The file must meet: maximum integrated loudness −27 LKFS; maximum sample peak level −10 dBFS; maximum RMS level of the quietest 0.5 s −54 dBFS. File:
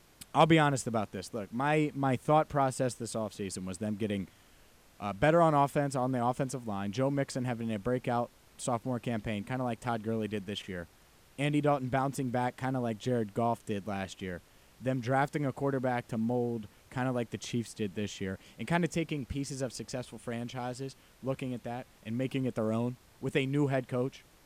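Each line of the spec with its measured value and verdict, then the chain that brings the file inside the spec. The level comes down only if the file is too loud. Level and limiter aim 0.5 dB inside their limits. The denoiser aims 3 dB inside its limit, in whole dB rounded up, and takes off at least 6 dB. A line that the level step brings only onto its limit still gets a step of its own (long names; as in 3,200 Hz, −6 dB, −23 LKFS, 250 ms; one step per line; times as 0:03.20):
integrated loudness −32.5 LKFS: in spec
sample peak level −10.5 dBFS: in spec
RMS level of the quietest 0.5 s −61 dBFS: in spec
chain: no processing needed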